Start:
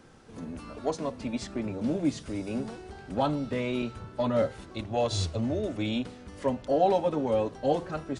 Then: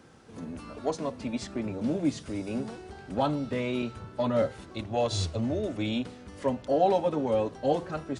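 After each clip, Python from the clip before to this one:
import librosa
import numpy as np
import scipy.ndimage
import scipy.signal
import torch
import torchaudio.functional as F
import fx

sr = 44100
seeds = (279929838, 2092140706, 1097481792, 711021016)

y = scipy.signal.sosfilt(scipy.signal.butter(2, 53.0, 'highpass', fs=sr, output='sos'), x)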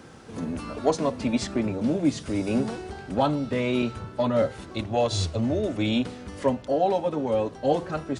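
y = fx.rider(x, sr, range_db=4, speed_s=0.5)
y = y * librosa.db_to_amplitude(4.0)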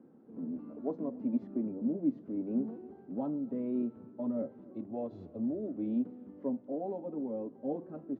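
y = fx.ladder_bandpass(x, sr, hz=290.0, resonance_pct=45)
y = y + 10.0 ** (-24.0 / 20.0) * np.pad(y, (int(280 * sr / 1000.0), 0))[:len(y)]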